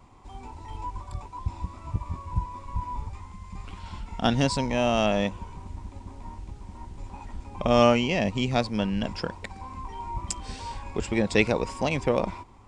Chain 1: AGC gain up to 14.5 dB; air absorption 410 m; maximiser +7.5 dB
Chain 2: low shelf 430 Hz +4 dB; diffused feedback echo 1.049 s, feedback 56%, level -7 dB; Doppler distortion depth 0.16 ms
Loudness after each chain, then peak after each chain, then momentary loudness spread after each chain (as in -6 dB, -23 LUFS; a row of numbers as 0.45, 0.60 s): -16.0, -25.5 LUFS; -1.0, -5.0 dBFS; 10, 13 LU